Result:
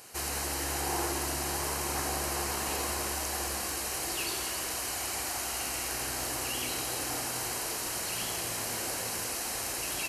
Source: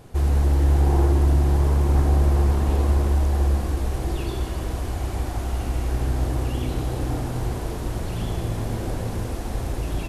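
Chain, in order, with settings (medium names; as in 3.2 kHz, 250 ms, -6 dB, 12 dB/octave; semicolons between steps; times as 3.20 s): high-pass 1.2 kHz 6 dB/octave; treble shelf 2.2 kHz +12 dB; band-stop 3.5 kHz, Q 5.3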